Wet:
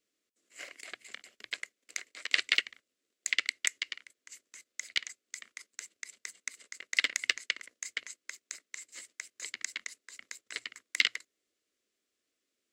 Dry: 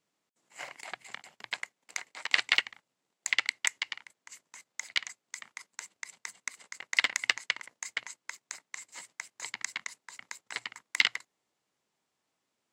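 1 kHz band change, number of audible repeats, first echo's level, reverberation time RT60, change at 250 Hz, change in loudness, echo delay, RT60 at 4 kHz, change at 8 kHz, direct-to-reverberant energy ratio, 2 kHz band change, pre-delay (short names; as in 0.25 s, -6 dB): -9.0 dB, none, none, none, -1.5 dB, -1.5 dB, none, none, 0.0 dB, none, -2.0 dB, none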